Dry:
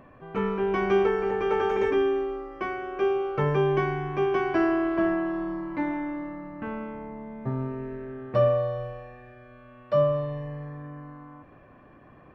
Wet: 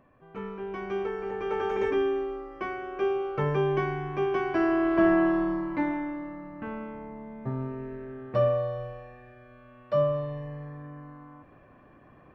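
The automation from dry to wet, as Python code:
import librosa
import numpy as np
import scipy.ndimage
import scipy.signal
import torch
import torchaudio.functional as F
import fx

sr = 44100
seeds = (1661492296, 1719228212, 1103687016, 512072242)

y = fx.gain(x, sr, db=fx.line((0.87, -10.0), (1.85, -2.5), (4.56, -2.5), (5.24, 5.5), (6.19, -2.5)))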